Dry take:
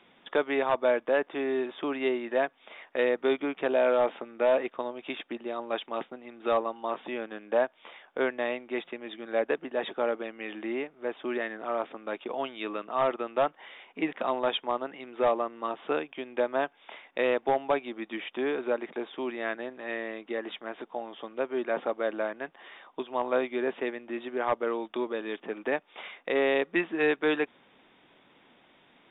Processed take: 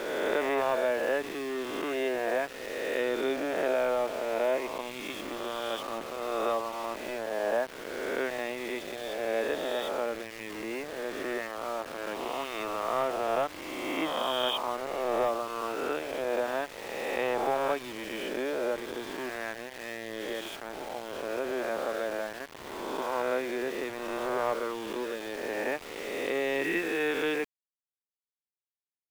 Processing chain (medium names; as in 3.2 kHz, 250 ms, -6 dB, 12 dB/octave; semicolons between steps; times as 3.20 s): reverse spectral sustain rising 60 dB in 2.29 s; small samples zeroed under -33 dBFS; trim -5.5 dB